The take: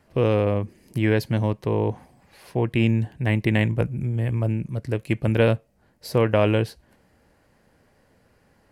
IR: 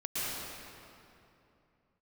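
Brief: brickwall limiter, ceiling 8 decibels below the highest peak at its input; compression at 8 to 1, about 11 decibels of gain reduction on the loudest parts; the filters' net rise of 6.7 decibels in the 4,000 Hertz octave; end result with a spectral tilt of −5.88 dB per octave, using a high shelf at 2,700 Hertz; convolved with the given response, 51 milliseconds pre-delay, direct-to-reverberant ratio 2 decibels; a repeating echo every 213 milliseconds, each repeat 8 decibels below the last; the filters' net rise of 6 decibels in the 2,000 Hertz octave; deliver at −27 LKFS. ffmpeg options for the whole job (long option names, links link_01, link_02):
-filter_complex "[0:a]equalizer=frequency=2000:width_type=o:gain=4.5,highshelf=frequency=2700:gain=4,equalizer=frequency=4000:width_type=o:gain=4,acompressor=threshold=-25dB:ratio=8,alimiter=limit=-20.5dB:level=0:latency=1,aecho=1:1:213|426|639|852|1065:0.398|0.159|0.0637|0.0255|0.0102,asplit=2[link_01][link_02];[1:a]atrim=start_sample=2205,adelay=51[link_03];[link_02][link_03]afir=irnorm=-1:irlink=0,volume=-8.5dB[link_04];[link_01][link_04]amix=inputs=2:normalize=0,volume=3dB"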